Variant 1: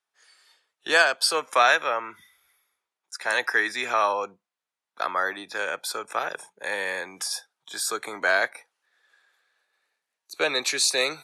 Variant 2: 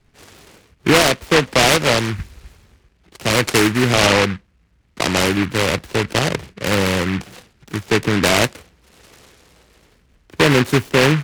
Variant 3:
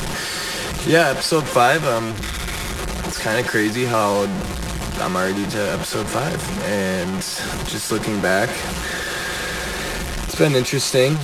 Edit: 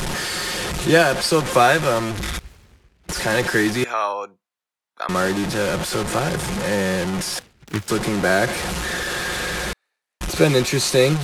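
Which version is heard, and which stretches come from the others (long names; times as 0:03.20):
3
0:02.39–0:03.09: punch in from 2
0:03.84–0:05.09: punch in from 1
0:07.39–0:07.88: punch in from 2
0:09.73–0:10.21: punch in from 1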